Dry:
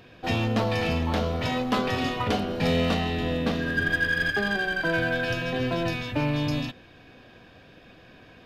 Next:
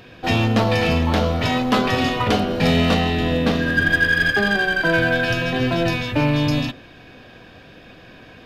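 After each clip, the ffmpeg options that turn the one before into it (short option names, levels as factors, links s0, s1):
-af "bandreject=f=46.07:t=h:w=4,bandreject=f=92.14:t=h:w=4,bandreject=f=138.21:t=h:w=4,bandreject=f=184.28:t=h:w=4,bandreject=f=230.35:t=h:w=4,bandreject=f=276.42:t=h:w=4,bandreject=f=322.49:t=h:w=4,bandreject=f=368.56:t=h:w=4,bandreject=f=414.63:t=h:w=4,bandreject=f=460.7:t=h:w=4,bandreject=f=506.77:t=h:w=4,bandreject=f=552.84:t=h:w=4,bandreject=f=598.91:t=h:w=4,bandreject=f=644.98:t=h:w=4,bandreject=f=691.05:t=h:w=4,bandreject=f=737.12:t=h:w=4,bandreject=f=783.19:t=h:w=4,bandreject=f=829.26:t=h:w=4,bandreject=f=875.33:t=h:w=4,bandreject=f=921.4:t=h:w=4,bandreject=f=967.47:t=h:w=4,bandreject=f=1013.54:t=h:w=4,bandreject=f=1059.61:t=h:w=4,bandreject=f=1105.68:t=h:w=4,bandreject=f=1151.75:t=h:w=4,bandreject=f=1197.82:t=h:w=4,bandreject=f=1243.89:t=h:w=4,volume=2.37"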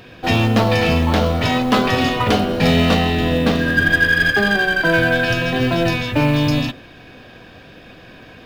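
-af "acrusher=bits=8:mode=log:mix=0:aa=0.000001,volume=1.33"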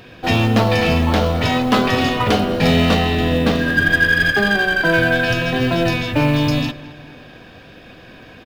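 -filter_complex "[0:a]asplit=2[s0][s1];[s1]adelay=215,lowpass=f=3200:p=1,volume=0.133,asplit=2[s2][s3];[s3]adelay=215,lowpass=f=3200:p=1,volume=0.52,asplit=2[s4][s5];[s5]adelay=215,lowpass=f=3200:p=1,volume=0.52,asplit=2[s6][s7];[s7]adelay=215,lowpass=f=3200:p=1,volume=0.52[s8];[s0][s2][s4][s6][s8]amix=inputs=5:normalize=0"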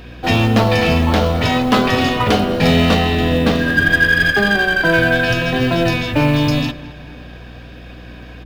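-af "aeval=exprs='val(0)+0.0141*(sin(2*PI*60*n/s)+sin(2*PI*2*60*n/s)/2+sin(2*PI*3*60*n/s)/3+sin(2*PI*4*60*n/s)/4+sin(2*PI*5*60*n/s)/5)':c=same,volume=1.19"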